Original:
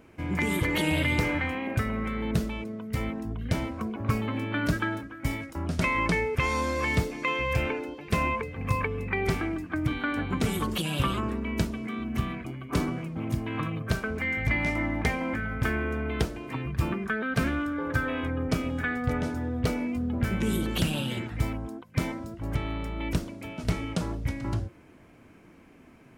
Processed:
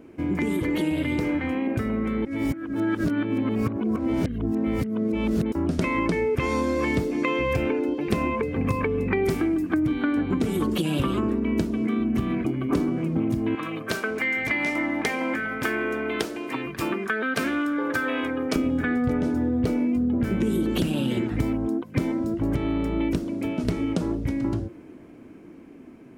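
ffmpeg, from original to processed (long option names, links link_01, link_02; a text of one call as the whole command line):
ffmpeg -i in.wav -filter_complex "[0:a]asettb=1/sr,asplit=3[link_01][link_02][link_03];[link_01]atrim=end=9.234[link_04];[link_02]atrim=start=9.23:end=9.8,asetpts=PTS-STARTPTS,afade=type=in:duration=0.004:curve=qsin,afade=type=out:start_time=0.566:duration=0.004:curve=qsin,highshelf=frequency=6500:gain=12[link_05];[link_03]atrim=start=9.796[link_06];[link_04][link_05]acrossfade=duration=0.004:curve1=hsin:curve2=qsin[link_07];[link_07][link_06]acrossfade=duration=0.004:curve1=qsin:curve2=hsin,asettb=1/sr,asplit=3[link_08][link_09][link_10];[link_08]atrim=end=13.554[link_11];[link_09]atrim=start=13.55:end=18.56,asetpts=PTS-STARTPTS,afade=type=in:duration=0.004:curve=qsin,afade=type=out:start_time=5.006:duration=0.004:curve=qsin,highpass=frequency=1300:poles=1[link_12];[link_10]atrim=start=18.556[link_13];[link_11][link_12]acrossfade=duration=0.004:curve1=hsin:curve2=qsin[link_14];[link_14][link_13]acrossfade=duration=0.004:curve1=qsin:curve2=hsin,asplit=3[link_15][link_16][link_17];[link_15]atrim=end=2.252[link_18];[link_16]atrim=start=2.248:end=5.522,asetpts=PTS-STARTPTS,areverse[link_19];[link_17]atrim=start=5.518[link_20];[link_18][link_19]acrossfade=duration=0.004:curve1=hsin:curve2=hsin[link_21];[link_21][link_20]acrossfade=duration=0.004:curve1=hsin:curve2=hsin,dynaudnorm=framelen=590:gausssize=13:maxgain=9.5dB,equalizer=frequency=310:width=0.87:gain=12.5,acompressor=threshold=-20dB:ratio=6,volume=-1.5dB" out.wav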